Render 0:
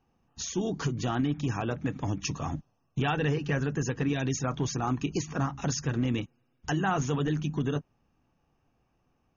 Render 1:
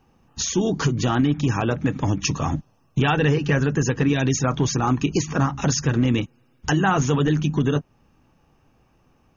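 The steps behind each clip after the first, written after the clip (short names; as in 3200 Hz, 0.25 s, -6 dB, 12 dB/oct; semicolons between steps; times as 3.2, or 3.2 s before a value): notch 710 Hz, Q 17; in parallel at -2.5 dB: compressor, threshold -37 dBFS, peak gain reduction 13 dB; on the sum: gain +7 dB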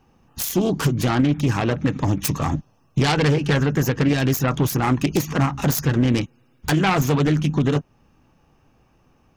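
self-modulated delay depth 0.23 ms; gain +1.5 dB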